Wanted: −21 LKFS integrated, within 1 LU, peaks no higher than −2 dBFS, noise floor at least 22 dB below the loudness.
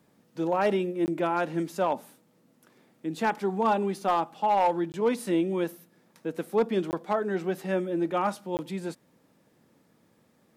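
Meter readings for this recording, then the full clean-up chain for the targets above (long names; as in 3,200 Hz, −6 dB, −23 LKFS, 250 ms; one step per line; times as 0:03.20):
share of clipped samples 0.3%; peaks flattened at −17.0 dBFS; number of dropouts 4; longest dropout 19 ms; integrated loudness −28.5 LKFS; sample peak −17.0 dBFS; target loudness −21.0 LKFS
→ clipped peaks rebuilt −17 dBFS
repair the gap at 0:01.06/0:04.92/0:06.91/0:08.57, 19 ms
level +7.5 dB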